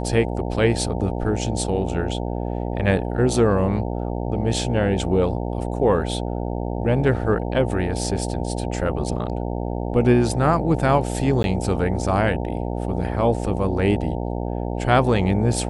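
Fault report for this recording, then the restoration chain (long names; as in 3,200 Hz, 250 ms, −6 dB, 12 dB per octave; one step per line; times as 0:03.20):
mains buzz 60 Hz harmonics 15 −26 dBFS
0:11.43–0:11.44: drop-out 11 ms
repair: hum removal 60 Hz, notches 15
repair the gap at 0:11.43, 11 ms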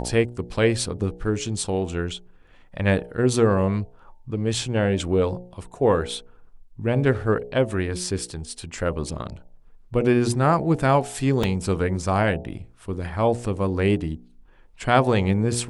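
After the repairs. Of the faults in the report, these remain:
none of them is left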